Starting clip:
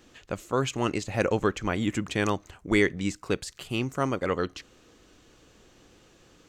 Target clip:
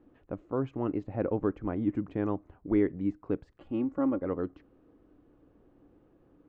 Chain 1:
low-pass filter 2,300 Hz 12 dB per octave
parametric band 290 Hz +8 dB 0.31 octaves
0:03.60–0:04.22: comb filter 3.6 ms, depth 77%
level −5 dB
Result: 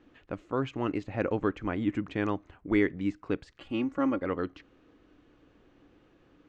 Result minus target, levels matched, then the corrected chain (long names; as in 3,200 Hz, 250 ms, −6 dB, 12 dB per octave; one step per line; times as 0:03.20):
2,000 Hz band +10.5 dB
low-pass filter 880 Hz 12 dB per octave
parametric band 290 Hz +8 dB 0.31 octaves
0:03.60–0:04.22: comb filter 3.6 ms, depth 77%
level −5 dB